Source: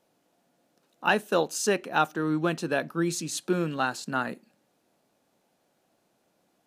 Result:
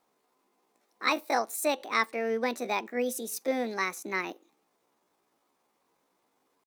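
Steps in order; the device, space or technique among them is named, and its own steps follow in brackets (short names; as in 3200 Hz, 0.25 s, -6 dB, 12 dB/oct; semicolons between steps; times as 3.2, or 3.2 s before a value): chipmunk voice (pitch shift +6.5 st); gain -3 dB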